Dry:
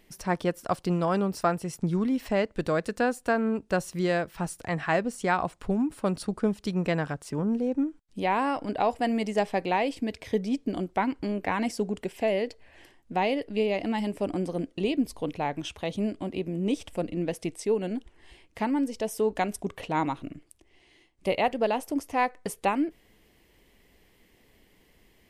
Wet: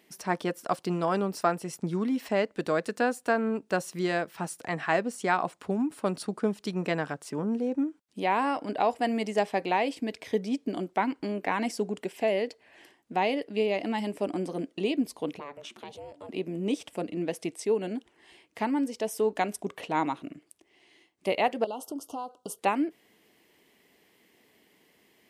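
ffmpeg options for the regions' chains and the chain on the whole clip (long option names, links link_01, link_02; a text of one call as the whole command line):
ffmpeg -i in.wav -filter_complex "[0:a]asettb=1/sr,asplit=3[link_01][link_02][link_03];[link_01]atrim=end=15.394[link_04];[link_02]atrim=start=15.39:end=16.29,asetpts=PTS-STARTPTS,afade=type=in:duration=0.004:curve=qsin,afade=type=out:start_time=0.896:duration=0.004:curve=qsin,acompressor=threshold=-36dB:ratio=3:attack=3.2:release=140:knee=1:detection=peak,aeval=exprs='val(0)*sin(2*PI*290*n/s)':channel_layout=same[link_05];[link_03]atrim=start=16.286[link_06];[link_04][link_05]acrossfade=duration=0.004:curve1=hsin:curve2=qsin[link_07];[link_07][link_06]acrossfade=duration=0.004:curve1=qsin:curve2=hsin,asettb=1/sr,asplit=3[link_08][link_09][link_10];[link_08]atrim=end=21.644[link_11];[link_09]atrim=start=21.64:end=22.59,asetpts=PTS-STARTPTS,afade=type=in:duration=0.004:curve=qsin,afade=type=out:start_time=0.946:duration=0.004:curve=qsin,acompressor=threshold=-30dB:ratio=12:attack=3.2:release=140:knee=1:detection=peak,asuperstop=centerf=2000:order=20:qfactor=1.5[link_12];[link_10]atrim=start=22.586[link_13];[link_11][link_12]acrossfade=duration=0.004:curve1=hsin:curve2=qsin[link_14];[link_14][link_13]acrossfade=duration=0.004:curve1=qsin:curve2=hsin,highpass=210,bandreject=frequency=530:width=17" out.wav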